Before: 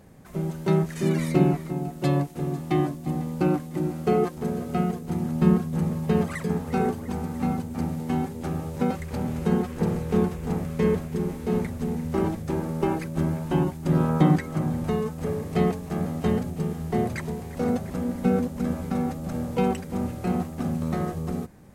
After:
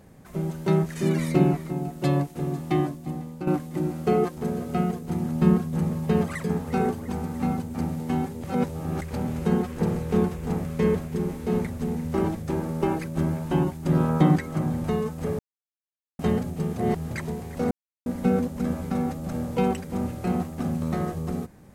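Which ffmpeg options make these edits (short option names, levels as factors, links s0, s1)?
-filter_complex "[0:a]asplit=10[s0][s1][s2][s3][s4][s5][s6][s7][s8][s9];[s0]atrim=end=3.47,asetpts=PTS-STARTPTS,afade=t=out:st=2.73:d=0.74:silence=0.281838[s10];[s1]atrim=start=3.47:end=8.442,asetpts=PTS-STARTPTS,afade=t=in:d=0.004:c=hsin:silence=0.281838[s11];[s2]atrim=start=8.438:end=9.012,asetpts=PTS-STARTPTS,areverse[s12];[s3]atrim=start=9.008:end=15.39,asetpts=PTS-STARTPTS,afade=t=out:st=6.378:d=0.004:c=hsin[s13];[s4]atrim=start=15.39:end=16.19,asetpts=PTS-STARTPTS,volume=0[s14];[s5]atrim=start=16.19:end=16.762,asetpts=PTS-STARTPTS,afade=t=in:d=0.004:c=hsin[s15];[s6]atrim=start=16.758:end=17.112,asetpts=PTS-STARTPTS,areverse[s16];[s7]atrim=start=17.108:end=17.71,asetpts=PTS-STARTPTS,afade=t=out:st=0.598:d=0.004:c=hsin[s17];[s8]atrim=start=17.71:end=18.06,asetpts=PTS-STARTPTS,volume=0[s18];[s9]atrim=start=18.06,asetpts=PTS-STARTPTS,afade=t=in:d=0.004:c=hsin[s19];[s10][s11]concat=n=2:v=0:a=1[s20];[s20][s12]acrossfade=d=0.004:c1=hsin:c2=hsin[s21];[s13][s14][s15]concat=n=3:v=0:a=1[s22];[s21][s22]acrossfade=d=0.004:c1=hsin:c2=hsin[s23];[s23][s16]acrossfade=d=0.004:c1=hsin:c2=hsin[s24];[s17][s18][s19]concat=n=3:v=0:a=1[s25];[s24][s25]acrossfade=d=0.004:c1=hsin:c2=hsin"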